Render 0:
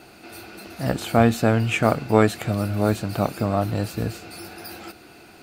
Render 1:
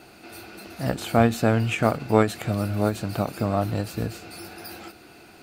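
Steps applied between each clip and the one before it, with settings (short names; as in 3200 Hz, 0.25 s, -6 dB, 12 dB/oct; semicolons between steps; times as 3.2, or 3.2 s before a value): ending taper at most 180 dB/s; gain -1.5 dB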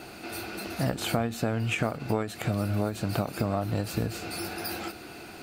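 compressor 12:1, threshold -29 dBFS, peak gain reduction 17.5 dB; gain +5 dB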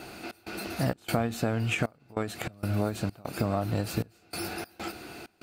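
step gate "xx.xxx.xxxxx.." 97 bpm -24 dB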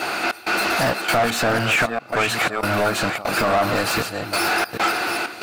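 reverse delay 0.398 s, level -10 dB; overdrive pedal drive 26 dB, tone 6900 Hz, clips at -14 dBFS; dynamic EQ 1200 Hz, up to +7 dB, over -38 dBFS, Q 0.79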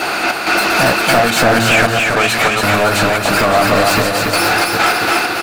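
in parallel at -6 dB: overloaded stage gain 24 dB; on the sum: feedback echo 0.281 s, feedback 41%, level -3 dB; gain +4 dB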